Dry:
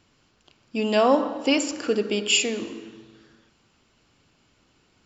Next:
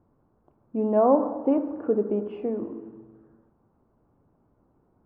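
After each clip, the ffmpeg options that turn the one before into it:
ffmpeg -i in.wav -af "lowpass=frequency=1000:width=0.5412,lowpass=frequency=1000:width=1.3066" out.wav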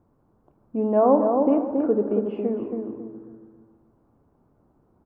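ffmpeg -i in.wav -filter_complex "[0:a]asplit=2[link_01][link_02];[link_02]adelay=275,lowpass=frequency=1300:poles=1,volume=-4dB,asplit=2[link_03][link_04];[link_04]adelay=275,lowpass=frequency=1300:poles=1,volume=0.3,asplit=2[link_05][link_06];[link_06]adelay=275,lowpass=frequency=1300:poles=1,volume=0.3,asplit=2[link_07][link_08];[link_08]adelay=275,lowpass=frequency=1300:poles=1,volume=0.3[link_09];[link_01][link_03][link_05][link_07][link_09]amix=inputs=5:normalize=0,volume=1.5dB" out.wav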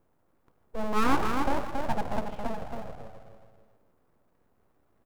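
ffmpeg -i in.wav -af "aeval=exprs='abs(val(0))':channel_layout=same,crystalizer=i=1.5:c=0,volume=-4.5dB" out.wav

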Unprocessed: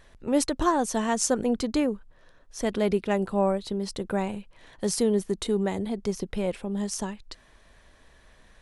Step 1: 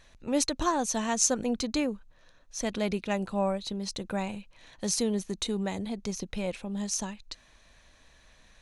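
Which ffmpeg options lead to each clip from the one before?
ffmpeg -i in.wav -af "equalizer=frequency=400:width_type=o:width=0.33:gain=-6,equalizer=frequency=2500:width_type=o:width=0.33:gain=6,equalizer=frequency=4000:width_type=o:width=0.33:gain=7,equalizer=frequency=6300:width_type=o:width=0.33:gain=9,volume=-3.5dB" out.wav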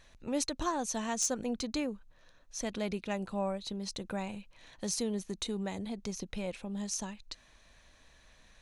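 ffmpeg -i in.wav -filter_complex "[0:a]asplit=2[link_01][link_02];[link_02]acompressor=threshold=-36dB:ratio=6,volume=-1.5dB[link_03];[link_01][link_03]amix=inputs=2:normalize=0,aeval=exprs='0.237*(abs(mod(val(0)/0.237+3,4)-2)-1)':channel_layout=same,volume=-7.5dB" out.wav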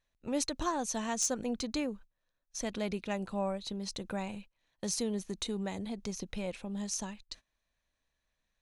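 ffmpeg -i in.wav -af "agate=range=-22dB:threshold=-48dB:ratio=16:detection=peak" out.wav

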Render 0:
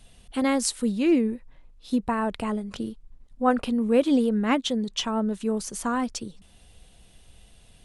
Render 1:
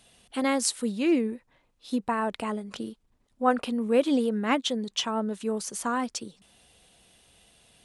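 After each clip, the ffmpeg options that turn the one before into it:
ffmpeg -i in.wav -af "highpass=frequency=300:poles=1" out.wav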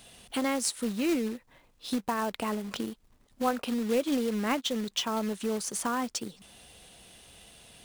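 ffmpeg -i in.wav -af "acompressor=threshold=-40dB:ratio=2,acrusher=bits=3:mode=log:mix=0:aa=0.000001,volume=6dB" out.wav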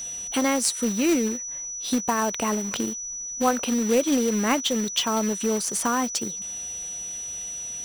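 ffmpeg -i in.wav -af "aeval=exprs='val(0)+0.0141*sin(2*PI*5900*n/s)':channel_layout=same,volume=6dB" out.wav

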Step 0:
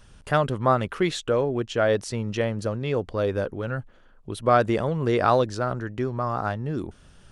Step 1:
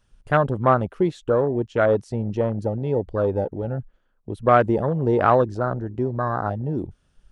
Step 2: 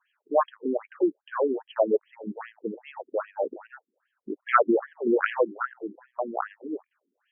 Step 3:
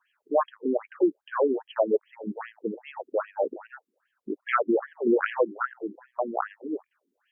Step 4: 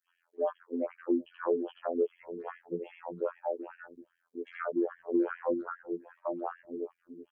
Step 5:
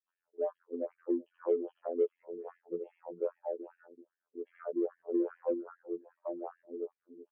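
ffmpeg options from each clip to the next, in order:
ffmpeg -i in.wav -af "afwtdn=0.0447,volume=3dB" out.wav
ffmpeg -i in.wav -af "equalizer=frequency=3000:width_type=o:width=2.7:gain=6,afftfilt=real='re*between(b*sr/1024,290*pow(2400/290,0.5+0.5*sin(2*PI*2.5*pts/sr))/1.41,290*pow(2400/290,0.5+0.5*sin(2*PI*2.5*pts/sr))*1.41)':imag='im*between(b*sr/1024,290*pow(2400/290,0.5+0.5*sin(2*PI*2.5*pts/sr))/1.41,290*pow(2400/290,0.5+0.5*sin(2*PI*2.5*pts/sr))*1.41)':win_size=1024:overlap=0.75" out.wav
ffmpeg -i in.wav -af "alimiter=limit=-14dB:level=0:latency=1:release=310,volume=1.5dB" out.wav
ffmpeg -i in.wav -filter_complex "[0:a]afftfilt=real='hypot(re,im)*cos(PI*b)':imag='0':win_size=2048:overlap=0.75,acrossover=split=450|1300[link_01][link_02][link_03];[link_01]acompressor=threshold=-27dB:ratio=4[link_04];[link_02]acompressor=threshold=-39dB:ratio=4[link_05];[link_03]acompressor=threshold=-52dB:ratio=4[link_06];[link_04][link_05][link_06]amix=inputs=3:normalize=0,acrossover=split=270|2700[link_07][link_08][link_09];[link_08]adelay=80[link_10];[link_07]adelay=460[link_11];[link_11][link_10][link_09]amix=inputs=3:normalize=0,volume=2dB" out.wav
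ffmpeg -i in.wav -af "bandpass=frequency=450:width_type=q:width=1.8:csg=0,aeval=exprs='0.119*(cos(1*acos(clip(val(0)/0.119,-1,1)))-cos(1*PI/2))+0.000841*(cos(7*acos(clip(val(0)/0.119,-1,1)))-cos(7*PI/2))':channel_layout=same" out.wav

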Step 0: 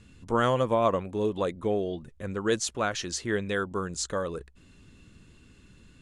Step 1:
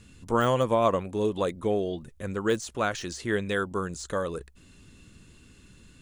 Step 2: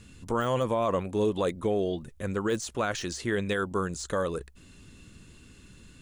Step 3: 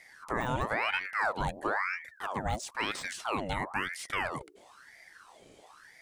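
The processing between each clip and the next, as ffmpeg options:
ffmpeg -i in.wav -af "highshelf=frequency=6400:gain=9,deesser=0.8,volume=1dB" out.wav
ffmpeg -i in.wav -af "alimiter=limit=-19.5dB:level=0:latency=1:release=22,volume=1.5dB" out.wav
ffmpeg -i in.wav -af "aeval=exprs='val(0)*sin(2*PI*1200*n/s+1200*0.7/1*sin(2*PI*1*n/s))':channel_layout=same,volume=-1.5dB" out.wav

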